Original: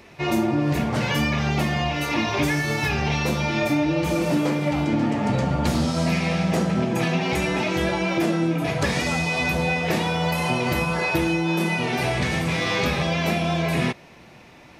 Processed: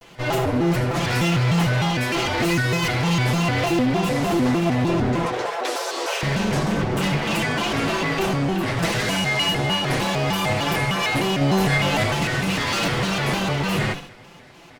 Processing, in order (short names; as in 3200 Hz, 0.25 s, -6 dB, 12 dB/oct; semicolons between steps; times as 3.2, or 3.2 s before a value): minimum comb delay 6.8 ms; 5.26–6.24 steep high-pass 360 Hz 72 dB/oct; overloaded stage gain 19 dB; 11.39–12.04 doubler 24 ms -3 dB; feedback echo 74 ms, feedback 48%, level -11 dB; shaped vibrato square 3.3 Hz, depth 250 cents; gain +2.5 dB